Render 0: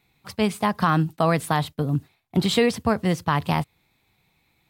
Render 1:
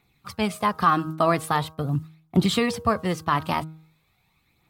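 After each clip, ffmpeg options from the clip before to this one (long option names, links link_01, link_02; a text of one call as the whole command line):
ffmpeg -i in.wav -af "equalizer=frequency=1200:width=7.5:gain=8.5,bandreject=frequency=158.2:width_type=h:width=4,bandreject=frequency=316.4:width_type=h:width=4,bandreject=frequency=474.6:width_type=h:width=4,bandreject=frequency=632.8:width_type=h:width=4,bandreject=frequency=791:width_type=h:width=4,bandreject=frequency=949.2:width_type=h:width=4,bandreject=frequency=1107.4:width_type=h:width=4,bandreject=frequency=1265.6:width_type=h:width=4,bandreject=frequency=1423.8:width_type=h:width=4,bandreject=frequency=1582:width_type=h:width=4,aphaser=in_gain=1:out_gain=1:delay=3.4:decay=0.39:speed=0.43:type=triangular,volume=-2dB" out.wav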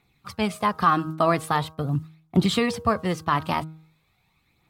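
ffmpeg -i in.wav -af "highshelf=frequency=11000:gain=-5.5" out.wav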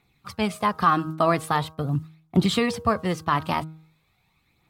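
ffmpeg -i in.wav -af anull out.wav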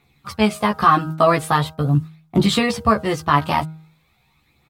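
ffmpeg -i in.wav -filter_complex "[0:a]asplit=2[link_01][link_02];[link_02]adelay=14,volume=-3dB[link_03];[link_01][link_03]amix=inputs=2:normalize=0,volume=4dB" out.wav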